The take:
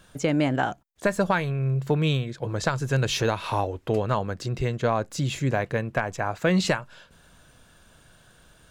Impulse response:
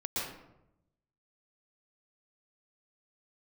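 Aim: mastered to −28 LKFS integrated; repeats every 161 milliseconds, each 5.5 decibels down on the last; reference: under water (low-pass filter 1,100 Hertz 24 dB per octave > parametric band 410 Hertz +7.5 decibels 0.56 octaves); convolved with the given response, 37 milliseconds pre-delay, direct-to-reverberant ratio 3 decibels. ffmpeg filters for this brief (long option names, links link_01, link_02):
-filter_complex "[0:a]aecho=1:1:161|322|483|644|805|966|1127:0.531|0.281|0.149|0.079|0.0419|0.0222|0.0118,asplit=2[link_01][link_02];[1:a]atrim=start_sample=2205,adelay=37[link_03];[link_02][link_03]afir=irnorm=-1:irlink=0,volume=-8dB[link_04];[link_01][link_04]amix=inputs=2:normalize=0,lowpass=frequency=1100:width=0.5412,lowpass=frequency=1100:width=1.3066,equalizer=frequency=410:width_type=o:width=0.56:gain=7.5,volume=-6.5dB"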